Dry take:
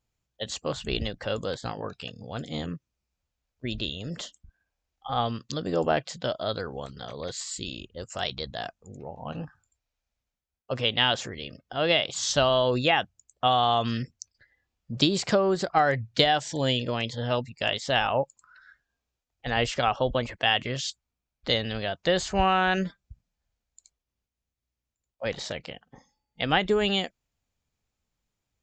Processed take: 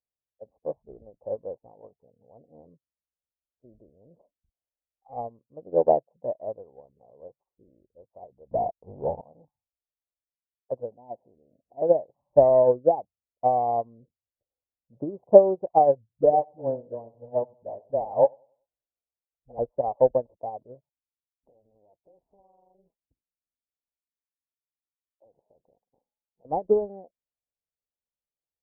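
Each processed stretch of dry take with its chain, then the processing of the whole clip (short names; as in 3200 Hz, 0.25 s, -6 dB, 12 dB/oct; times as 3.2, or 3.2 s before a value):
8.51–9.21 low shelf 88 Hz +9.5 dB + sample leveller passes 5 + upward compressor, threshold -30 dBFS
10.92–11.82 upward compressor, threshold -32 dBFS + rippled Chebyshev low-pass 1000 Hz, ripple 6 dB
16.09–19.59 dispersion highs, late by 54 ms, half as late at 320 Hz + feedback echo 95 ms, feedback 36%, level -13 dB
20.89–26.45 AM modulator 210 Hz, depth 60% + compressor 4:1, threshold -42 dBFS
whole clip: steep low-pass 970 Hz 72 dB/oct; bell 550 Hz +13 dB 1.4 oct; upward expander 2.5:1, over -25 dBFS; gain +1 dB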